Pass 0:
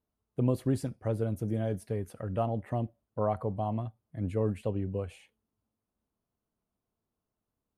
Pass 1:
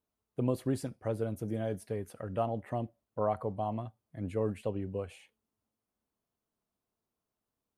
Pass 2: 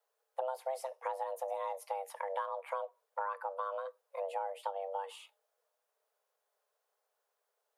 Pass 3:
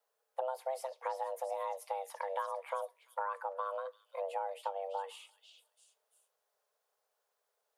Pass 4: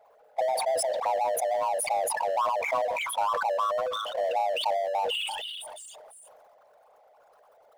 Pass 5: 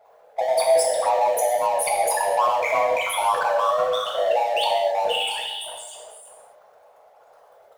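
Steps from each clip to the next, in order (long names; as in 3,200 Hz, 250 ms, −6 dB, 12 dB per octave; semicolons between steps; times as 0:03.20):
low-shelf EQ 200 Hz −7.5 dB
downward compressor 6 to 1, threshold −39 dBFS, peak gain reduction 13.5 dB; frequency shifter +390 Hz; level +4.5 dB
echo through a band-pass that steps 340 ms, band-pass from 4,400 Hz, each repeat 0.7 octaves, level −4 dB
spectral envelope exaggerated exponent 3; power curve on the samples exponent 0.7; level that may fall only so fast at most 22 dB per second; level +6.5 dB
convolution reverb, pre-delay 3 ms, DRR −1.5 dB; level +2.5 dB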